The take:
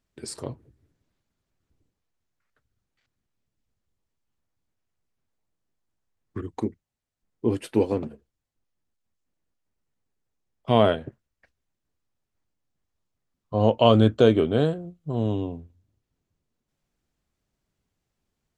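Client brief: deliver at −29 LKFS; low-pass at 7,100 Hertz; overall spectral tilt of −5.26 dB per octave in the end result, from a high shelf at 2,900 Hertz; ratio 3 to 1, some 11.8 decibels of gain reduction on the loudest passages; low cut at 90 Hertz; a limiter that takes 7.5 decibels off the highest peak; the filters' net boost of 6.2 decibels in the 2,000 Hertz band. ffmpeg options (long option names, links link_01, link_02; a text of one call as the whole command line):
ffmpeg -i in.wav -af "highpass=90,lowpass=7100,equalizer=frequency=2000:width_type=o:gain=6,highshelf=frequency=2900:gain=7,acompressor=threshold=-27dB:ratio=3,volume=5dB,alimiter=limit=-14dB:level=0:latency=1" out.wav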